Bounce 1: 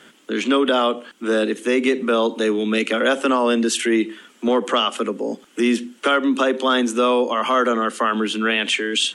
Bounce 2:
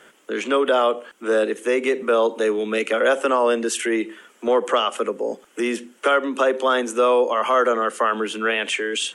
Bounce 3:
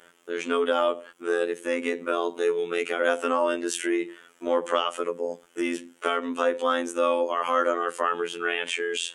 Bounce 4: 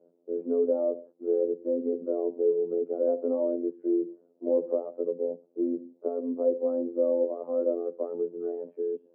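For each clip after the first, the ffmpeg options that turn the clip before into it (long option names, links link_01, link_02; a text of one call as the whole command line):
ffmpeg -i in.wav -af "equalizer=frequency=125:width_type=o:width=1:gain=-5,equalizer=frequency=250:width_type=o:width=1:gain=-9,equalizer=frequency=500:width_type=o:width=1:gain=4,equalizer=frequency=4000:width_type=o:width=1:gain=-8" out.wav
ffmpeg -i in.wav -af "afftfilt=real='hypot(re,im)*cos(PI*b)':imag='0':win_size=2048:overlap=0.75,volume=-2dB" out.wav
ffmpeg -i in.wav -af "asuperpass=centerf=330:order=8:qfactor=0.77" out.wav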